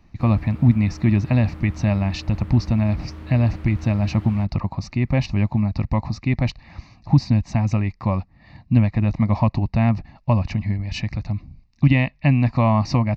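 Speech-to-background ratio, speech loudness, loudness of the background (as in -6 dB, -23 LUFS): 17.0 dB, -21.0 LUFS, -38.0 LUFS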